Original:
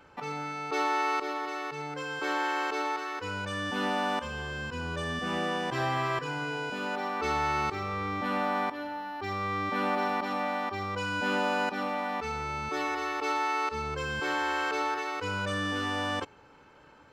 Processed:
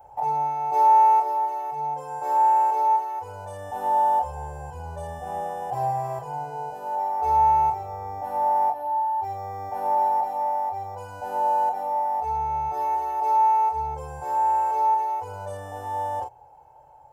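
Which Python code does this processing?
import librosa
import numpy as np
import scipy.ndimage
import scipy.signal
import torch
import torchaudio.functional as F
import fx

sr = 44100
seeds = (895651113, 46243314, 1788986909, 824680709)

p1 = fx.rider(x, sr, range_db=10, speed_s=2.0)
p2 = fx.curve_eq(p1, sr, hz=(140.0, 210.0, 430.0, 830.0, 1200.0, 2100.0, 3900.0, 11000.0), db=(0, -24, -7, 14, -16, -18, -20, 6))
p3 = p2 + fx.room_early_taps(p2, sr, ms=(25, 41), db=(-4.5, -7.0), dry=0)
y = p3 * librosa.db_to_amplitude(-1.0)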